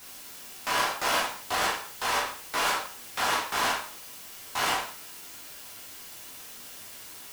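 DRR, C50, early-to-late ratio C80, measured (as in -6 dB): -5.0 dB, 5.5 dB, 9.5 dB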